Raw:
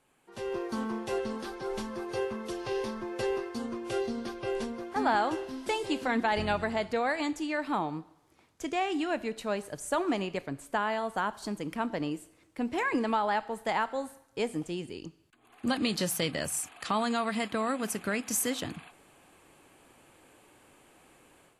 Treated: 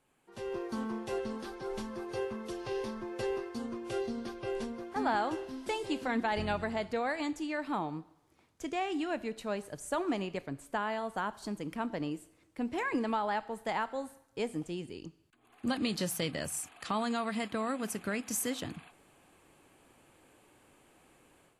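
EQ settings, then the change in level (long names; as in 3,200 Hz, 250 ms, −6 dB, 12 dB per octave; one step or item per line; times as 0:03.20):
low-shelf EQ 330 Hz +3 dB
−4.5 dB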